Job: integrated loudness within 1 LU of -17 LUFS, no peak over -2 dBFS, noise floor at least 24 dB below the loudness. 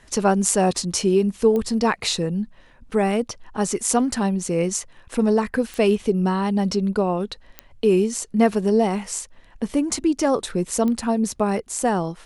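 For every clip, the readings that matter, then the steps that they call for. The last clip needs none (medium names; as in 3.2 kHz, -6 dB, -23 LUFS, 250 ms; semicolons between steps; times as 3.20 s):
clicks found 4; loudness -22.0 LUFS; peak level -2.5 dBFS; loudness target -17.0 LUFS
-> de-click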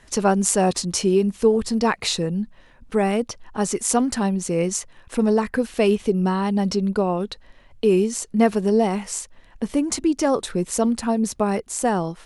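clicks found 0; loudness -22.0 LUFS; peak level -2.5 dBFS; loudness target -17.0 LUFS
-> trim +5 dB; peak limiter -2 dBFS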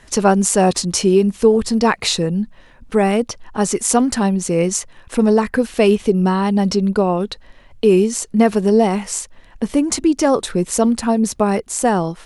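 loudness -17.0 LUFS; peak level -2.0 dBFS; noise floor -46 dBFS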